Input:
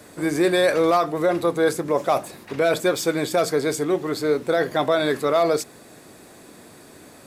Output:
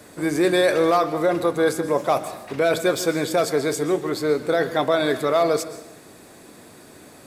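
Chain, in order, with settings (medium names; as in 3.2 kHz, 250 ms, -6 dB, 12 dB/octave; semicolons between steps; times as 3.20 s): plate-style reverb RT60 0.77 s, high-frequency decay 0.85×, pre-delay 110 ms, DRR 12.5 dB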